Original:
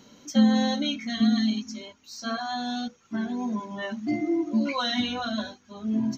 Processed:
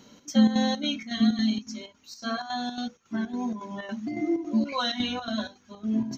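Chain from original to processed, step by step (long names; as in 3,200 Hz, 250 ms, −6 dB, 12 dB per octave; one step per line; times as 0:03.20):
square-wave tremolo 3.6 Hz, depth 60%, duty 70%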